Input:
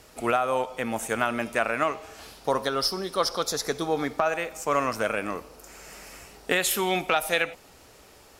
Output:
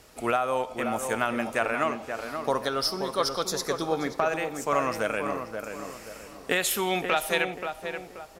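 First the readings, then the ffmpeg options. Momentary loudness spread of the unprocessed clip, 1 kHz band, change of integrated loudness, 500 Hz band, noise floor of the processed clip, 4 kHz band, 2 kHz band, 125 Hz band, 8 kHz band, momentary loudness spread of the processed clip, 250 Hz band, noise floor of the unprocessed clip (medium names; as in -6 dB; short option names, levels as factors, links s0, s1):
18 LU, -0.5 dB, -1.5 dB, -0.5 dB, -46 dBFS, -1.5 dB, -1.0 dB, -0.5 dB, -1.5 dB, 11 LU, 0.0 dB, -53 dBFS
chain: -filter_complex "[0:a]asplit=2[s0][s1];[s1]adelay=530,lowpass=f=1600:p=1,volume=0.501,asplit=2[s2][s3];[s3]adelay=530,lowpass=f=1600:p=1,volume=0.4,asplit=2[s4][s5];[s5]adelay=530,lowpass=f=1600:p=1,volume=0.4,asplit=2[s6][s7];[s7]adelay=530,lowpass=f=1600:p=1,volume=0.4,asplit=2[s8][s9];[s9]adelay=530,lowpass=f=1600:p=1,volume=0.4[s10];[s0][s2][s4][s6][s8][s10]amix=inputs=6:normalize=0,volume=0.841"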